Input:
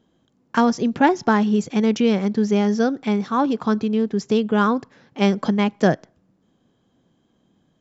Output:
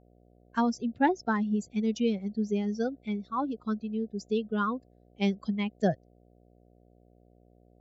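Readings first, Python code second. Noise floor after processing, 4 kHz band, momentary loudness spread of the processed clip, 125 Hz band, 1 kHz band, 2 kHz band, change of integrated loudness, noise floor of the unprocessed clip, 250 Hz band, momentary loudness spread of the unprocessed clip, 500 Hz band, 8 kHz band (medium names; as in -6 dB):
-61 dBFS, -11.5 dB, 6 LU, -10.0 dB, -10.0 dB, -10.5 dB, -10.5 dB, -65 dBFS, -10.0 dB, 4 LU, -11.0 dB, no reading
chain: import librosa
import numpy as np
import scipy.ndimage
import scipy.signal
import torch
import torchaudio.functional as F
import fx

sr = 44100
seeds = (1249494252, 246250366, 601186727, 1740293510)

y = fx.bin_expand(x, sr, power=2.0)
y = fx.dmg_buzz(y, sr, base_hz=60.0, harmonics=12, level_db=-54.0, tilt_db=-3, odd_only=False)
y = y * 10.0 ** (-6.5 / 20.0)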